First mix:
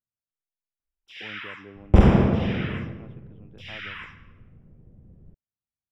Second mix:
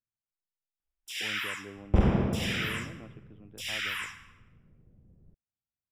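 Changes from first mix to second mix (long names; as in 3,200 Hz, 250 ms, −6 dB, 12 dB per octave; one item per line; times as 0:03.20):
first sound: remove high-frequency loss of the air 300 metres
second sound −8.5 dB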